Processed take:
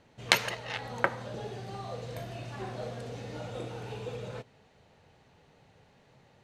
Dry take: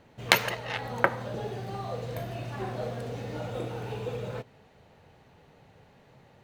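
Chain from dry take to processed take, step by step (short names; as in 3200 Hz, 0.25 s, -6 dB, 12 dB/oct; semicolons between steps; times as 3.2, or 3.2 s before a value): LPF 8200 Hz 12 dB/oct; high shelf 4000 Hz +8 dB; gain -4.5 dB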